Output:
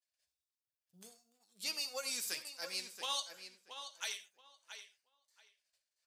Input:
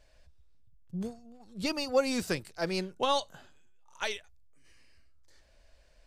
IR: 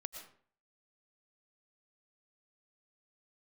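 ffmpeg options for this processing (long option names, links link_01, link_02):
-filter_complex "[0:a]flanger=delay=8.7:depth=1.3:regen=-54:speed=1.4:shape=sinusoidal,agate=range=-33dB:threshold=-53dB:ratio=3:detection=peak,aderivative,asplit=2[link_01][link_02];[link_02]adelay=678,lowpass=frequency=4500:poles=1,volume=-8.5dB,asplit=2[link_03][link_04];[link_04]adelay=678,lowpass=frequency=4500:poles=1,volume=0.19,asplit=2[link_05][link_06];[link_06]adelay=678,lowpass=frequency=4500:poles=1,volume=0.19[link_07];[link_01][link_03][link_05][link_07]amix=inputs=4:normalize=0,asplit=2[link_08][link_09];[1:a]atrim=start_sample=2205,afade=type=out:start_time=0.23:duration=0.01,atrim=end_sample=10584,asetrate=74970,aresample=44100[link_10];[link_09][link_10]afir=irnorm=-1:irlink=0,volume=6.5dB[link_11];[link_08][link_11]amix=inputs=2:normalize=0,volume=1.5dB"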